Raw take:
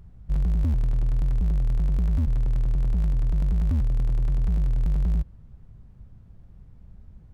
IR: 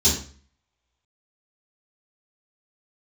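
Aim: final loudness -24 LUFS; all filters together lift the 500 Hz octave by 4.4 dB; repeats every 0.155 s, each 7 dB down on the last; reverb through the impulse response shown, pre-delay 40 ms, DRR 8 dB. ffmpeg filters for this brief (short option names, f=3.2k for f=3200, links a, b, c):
-filter_complex "[0:a]equalizer=f=500:t=o:g=5.5,aecho=1:1:155|310|465|620|775:0.447|0.201|0.0905|0.0407|0.0183,asplit=2[a][b];[1:a]atrim=start_sample=2205,adelay=40[c];[b][c]afir=irnorm=-1:irlink=0,volume=-22dB[d];[a][d]amix=inputs=2:normalize=0,volume=-3.5dB"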